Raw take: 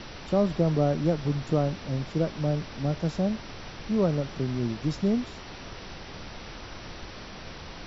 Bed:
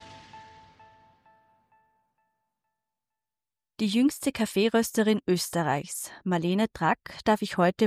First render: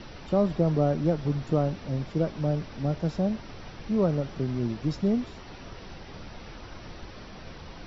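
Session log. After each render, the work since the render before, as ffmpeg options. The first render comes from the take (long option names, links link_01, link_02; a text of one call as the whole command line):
ffmpeg -i in.wav -af "afftdn=noise_reduction=6:noise_floor=-42" out.wav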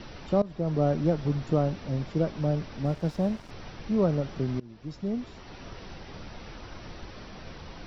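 ffmpeg -i in.wav -filter_complex "[0:a]asettb=1/sr,asplit=3[link_01][link_02][link_03];[link_01]atrim=end=2.854[link_04];[link_02]atrim=start=2.85:end=3.51,asetpts=PTS-STARTPTS,afade=type=in:duration=0.004:curve=qsin,afade=type=out:start_time=0.656:duration=0.004:curve=qsin,aeval=exprs='sgn(val(0))*max(abs(val(0))-0.00447,0)':channel_layout=same[link_05];[link_03]atrim=start=3.506[link_06];[link_04][link_05]acrossfade=duration=0.004:curve1=hsin:curve2=qsin[link_07];[link_07][link_06]acrossfade=duration=0.004:curve1=qsin:curve2=hsin,asplit=3[link_08][link_09][link_10];[link_08]atrim=end=0.42,asetpts=PTS-STARTPTS,afade=type=out:start_time=0.416:duration=0.004:curve=hsin:silence=0.112202[link_11];[link_09]atrim=start=0.42:end=4.6,asetpts=PTS-STARTPTS,afade=type=in:duration=0.45:silence=0.112202,afade=type=out:start_time=4.176:duration=0.004:curve=hsin:silence=0.0668344[link_12];[link_10]atrim=start=4.6,asetpts=PTS-STARTPTS,afade=type=in:duration=1.06:silence=0.0668344[link_13];[link_11][link_12][link_13]concat=n=3:v=0:a=1" out.wav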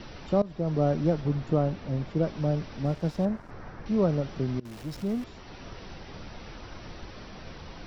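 ffmpeg -i in.wav -filter_complex "[0:a]asettb=1/sr,asplit=3[link_01][link_02][link_03];[link_01]atrim=end=1.214[link_04];[link_02]atrim=start=1.21:end=2.23,asetpts=PTS-STARTPTS,afade=type=in:duration=0.004:curve=qsin,afade=type=out:start_time=1.016:duration=0.004:curve=qsin,highshelf=frequency=5300:gain=-9[link_05];[link_03]atrim=start=2.226[link_06];[link_04][link_05]acrossfade=duration=0.004:curve1=hsin:curve2=qsin[link_07];[link_07][link_06]acrossfade=duration=0.004:curve1=qsin:curve2=hsin,asettb=1/sr,asplit=3[link_08][link_09][link_10];[link_08]atrim=end=3.254[link_11];[link_09]atrim=start=3.25:end=3.86,asetpts=PTS-STARTPTS,afade=type=in:duration=0.004:curve=qsin,afade=type=out:start_time=0.606:duration=0.004:curve=qsin,highshelf=frequency=2200:width_type=q:width=1.5:gain=-9.5[link_12];[link_10]atrim=start=3.856[link_13];[link_11][link_12]acrossfade=duration=0.004:curve1=hsin:curve2=qsin[link_14];[link_14][link_13]acrossfade=duration=0.004:curve1=qsin:curve2=hsin,asettb=1/sr,asplit=3[link_15][link_16][link_17];[link_15]atrim=end=4.654[link_18];[link_16]atrim=start=4.65:end=5.24,asetpts=PTS-STARTPTS,afade=type=in:duration=0.004:curve=qsin,afade=type=out:start_time=0.586:duration=0.004:curve=qsin,aeval=exprs='val(0)+0.5*0.00944*sgn(val(0))':channel_layout=same[link_19];[link_17]atrim=start=5.236[link_20];[link_18][link_19]acrossfade=duration=0.004:curve1=hsin:curve2=qsin[link_21];[link_21][link_20]acrossfade=duration=0.004:curve1=qsin:curve2=hsin" out.wav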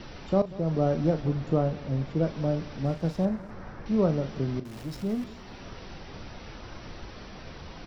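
ffmpeg -i in.wav -filter_complex "[0:a]asplit=2[link_01][link_02];[link_02]adelay=37,volume=-12dB[link_03];[link_01][link_03]amix=inputs=2:normalize=0,aecho=1:1:188|376|564|752:0.106|0.0498|0.0234|0.011" out.wav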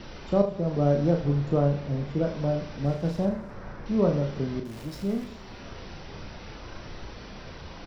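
ffmpeg -i in.wav -filter_complex "[0:a]asplit=2[link_01][link_02];[link_02]adelay=35,volume=-6dB[link_03];[link_01][link_03]amix=inputs=2:normalize=0,aecho=1:1:77:0.237" out.wav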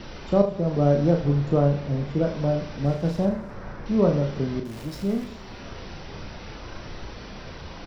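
ffmpeg -i in.wav -af "volume=3dB" out.wav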